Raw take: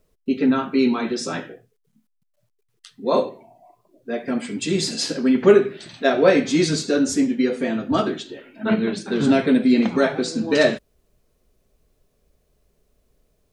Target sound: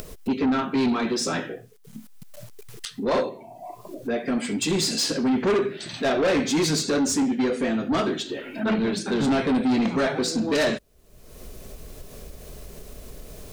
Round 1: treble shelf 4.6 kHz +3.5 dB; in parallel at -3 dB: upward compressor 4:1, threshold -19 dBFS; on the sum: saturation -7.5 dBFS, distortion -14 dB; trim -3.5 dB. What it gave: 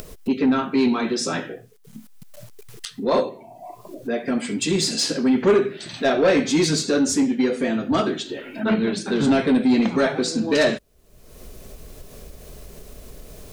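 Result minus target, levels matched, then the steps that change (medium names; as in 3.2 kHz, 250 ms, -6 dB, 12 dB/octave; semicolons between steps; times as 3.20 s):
saturation: distortion -6 dB
change: saturation -14.5 dBFS, distortion -8 dB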